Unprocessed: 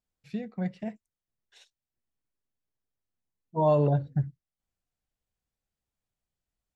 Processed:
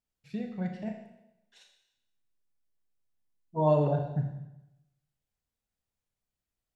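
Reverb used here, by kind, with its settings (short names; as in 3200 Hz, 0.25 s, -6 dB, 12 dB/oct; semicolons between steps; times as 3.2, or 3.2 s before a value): Schroeder reverb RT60 0.9 s, combs from 26 ms, DRR 3.5 dB; gain -2.5 dB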